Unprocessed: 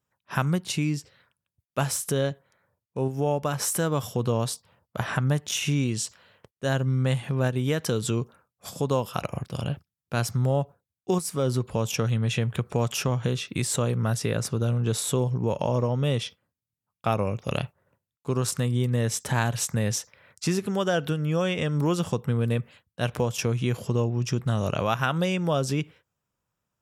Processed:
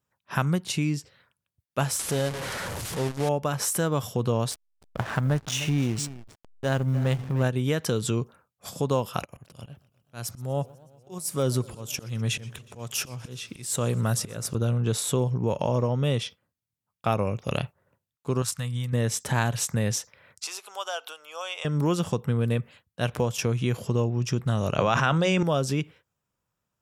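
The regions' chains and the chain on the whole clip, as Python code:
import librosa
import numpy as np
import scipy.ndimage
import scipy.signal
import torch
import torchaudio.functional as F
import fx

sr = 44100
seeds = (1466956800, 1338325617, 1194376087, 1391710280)

y = fx.chain(x, sr, fx.delta_mod(bps=64000, step_db=-26.5),
    fx.transformer_sat(knee_hz=340.0), at=(1.99, 3.29))
y = fx.chain(y, sr, fx.block_float(bits=7),
    fx.echo_single(ms=302, db=-12.5),
    fx.backlash(play_db=-30.0), at=(4.51, 7.43))
y = fx.chain(y, sr, fx.high_shelf(hz=7200.0, db=9.5),
    fx.auto_swell(attack_ms=314.0),
    fx.echo_warbled(ms=123, feedback_pct=74, rate_hz=2.8, cents=174, wet_db=-23.5), at=(9.2, 14.55))
y = fx.chain(y, sr, fx.peak_eq(hz=350.0, db=-13.0, octaves=1.8),
    fx.notch(hz=390.0, q=5.8),
    fx.upward_expand(threshold_db=-41.0, expansion=1.5), at=(18.42, 18.93))
y = fx.chain(y, sr, fx.highpass(hz=750.0, slope=24),
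    fx.peak_eq(hz=1800.0, db=-11.5, octaves=0.51), at=(20.44, 21.65))
y = fx.chain(y, sr, fx.cheby1_bandpass(low_hz=110.0, high_hz=7800.0, order=3),
    fx.hum_notches(base_hz=60, count=5),
    fx.env_flatten(amount_pct=100), at=(24.78, 25.43))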